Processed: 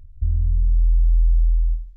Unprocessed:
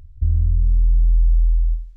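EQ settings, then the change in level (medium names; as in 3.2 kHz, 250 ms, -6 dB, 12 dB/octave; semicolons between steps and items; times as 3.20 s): bass shelf 66 Hz +9.5 dB; -8.0 dB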